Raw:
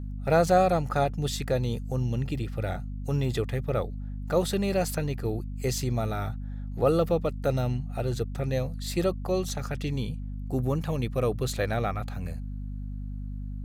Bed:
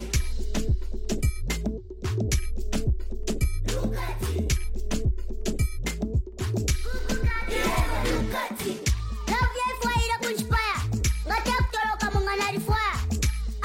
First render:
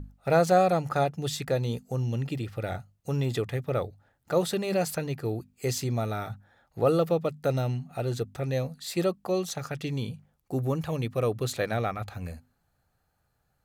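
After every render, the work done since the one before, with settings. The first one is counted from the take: hum notches 50/100/150/200/250 Hz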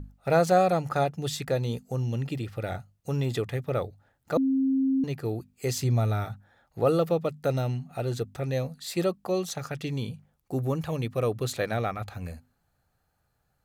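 4.37–5.04 s: bleep 267 Hz -21 dBFS; 5.78–6.25 s: peaking EQ 100 Hz +8.5 dB 0.88 oct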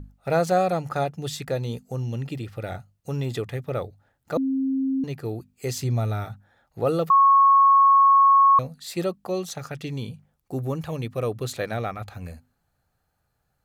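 7.10–8.59 s: bleep 1.1 kHz -12 dBFS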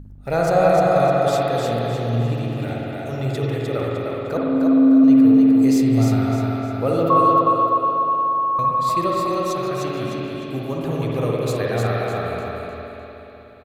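feedback delay 304 ms, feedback 36%, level -3.5 dB; spring tank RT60 3.8 s, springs 51/60 ms, chirp 45 ms, DRR -4 dB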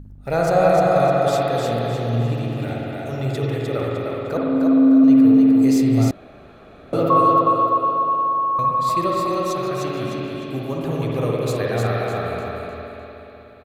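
6.11–6.93 s: room tone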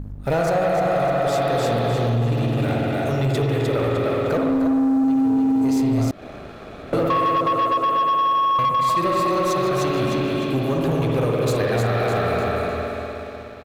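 compression, threshold -22 dBFS, peak gain reduction 12 dB; waveshaping leveller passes 2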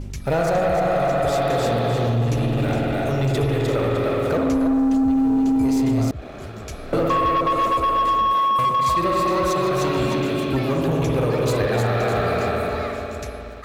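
add bed -10.5 dB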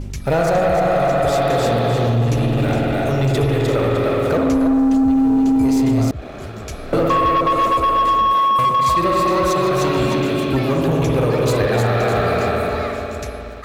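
trim +3.5 dB

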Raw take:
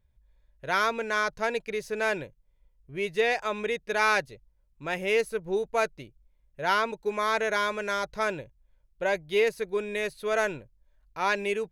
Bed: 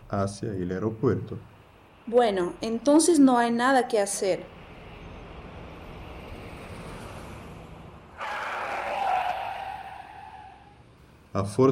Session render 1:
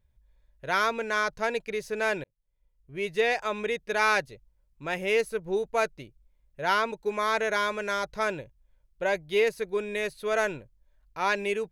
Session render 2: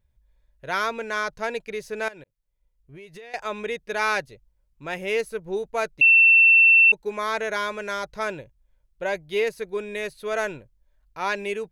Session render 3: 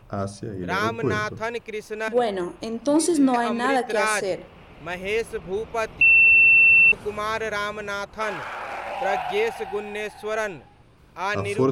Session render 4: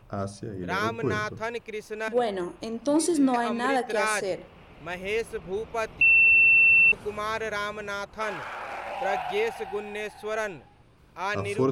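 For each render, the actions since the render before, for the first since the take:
2.24–3.11 s: fade in
2.08–3.34 s: compression 12:1, threshold -39 dBFS; 6.01–6.92 s: bleep 2.69 kHz -11 dBFS
add bed -1 dB
trim -3.5 dB

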